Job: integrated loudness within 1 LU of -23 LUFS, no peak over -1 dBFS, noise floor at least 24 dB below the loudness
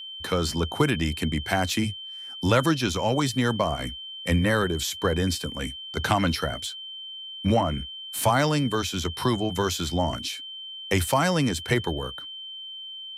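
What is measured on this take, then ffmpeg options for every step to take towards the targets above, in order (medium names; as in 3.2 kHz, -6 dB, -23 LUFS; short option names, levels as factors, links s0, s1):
steady tone 3.1 kHz; tone level -36 dBFS; loudness -26.0 LUFS; peak level -6.0 dBFS; loudness target -23.0 LUFS
-> -af "bandreject=f=3100:w=30"
-af "volume=1.41"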